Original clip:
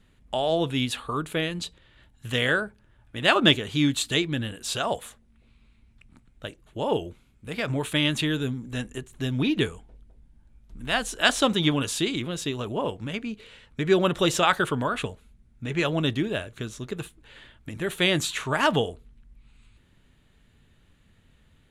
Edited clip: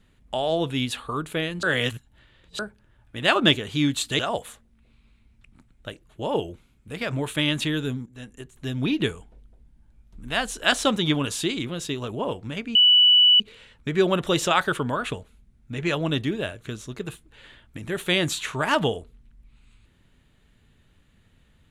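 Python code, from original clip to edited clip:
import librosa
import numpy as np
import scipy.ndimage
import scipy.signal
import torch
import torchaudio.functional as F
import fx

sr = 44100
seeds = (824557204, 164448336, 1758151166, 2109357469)

y = fx.edit(x, sr, fx.reverse_span(start_s=1.63, length_s=0.96),
    fx.cut(start_s=4.19, length_s=0.57),
    fx.fade_in_from(start_s=8.63, length_s=0.8, floor_db=-15.0),
    fx.insert_tone(at_s=13.32, length_s=0.65, hz=2960.0, db=-12.0), tone=tone)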